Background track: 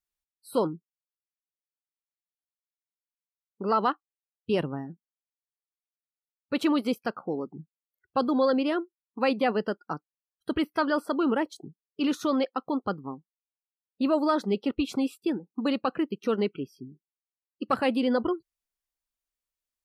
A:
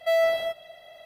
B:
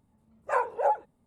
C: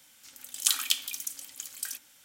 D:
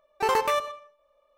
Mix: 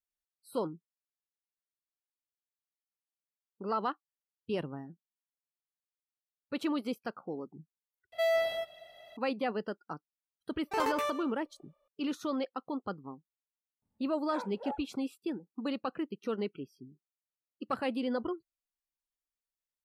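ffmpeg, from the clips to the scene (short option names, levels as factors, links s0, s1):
-filter_complex "[0:a]volume=0.398[s0];[1:a]equalizer=f=3600:t=o:w=1.8:g=2[s1];[4:a]bandreject=f=241.8:t=h:w=4,bandreject=f=483.6:t=h:w=4,bandreject=f=725.4:t=h:w=4,bandreject=f=967.2:t=h:w=4,bandreject=f=1209:t=h:w=4,bandreject=f=1450.8:t=h:w=4,bandreject=f=1692.6:t=h:w=4,bandreject=f=1934.4:t=h:w=4,bandreject=f=2176.2:t=h:w=4,bandreject=f=2418:t=h:w=4[s2];[s0]asplit=2[s3][s4];[s3]atrim=end=8.124[s5];[s1]atrim=end=1.05,asetpts=PTS-STARTPTS,volume=0.473[s6];[s4]atrim=start=9.166[s7];[s2]atrim=end=1.37,asetpts=PTS-STARTPTS,volume=0.376,afade=t=in:d=0.004:c=hsin,afade=t=out:st=1.366:d=0.004:c=hsin,adelay=10510[s8];[2:a]atrim=end=1.26,asetpts=PTS-STARTPTS,volume=0.178,afade=t=in:d=0.004:c=hsin,afade=t=out:st=1.256:d=0.004:c=hsin,adelay=13820[s9];[s5][s6]acrossfade=d=0.004:c1=hsin:c2=hsin[s10];[s10][s7]acrossfade=d=0.004:c1=hsin:c2=hsin[s11];[s11][s8][s9]amix=inputs=3:normalize=0"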